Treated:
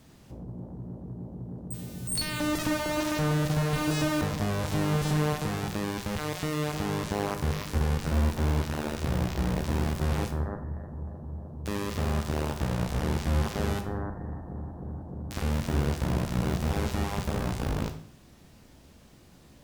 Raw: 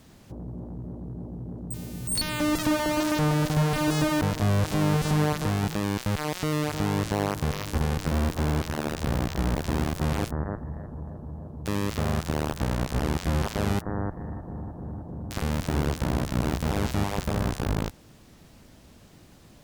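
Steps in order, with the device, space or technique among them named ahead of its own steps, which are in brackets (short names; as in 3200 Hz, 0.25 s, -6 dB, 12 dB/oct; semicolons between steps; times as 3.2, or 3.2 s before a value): bathroom (reverb RT60 0.60 s, pre-delay 12 ms, DRR 5.5 dB); gain -3.5 dB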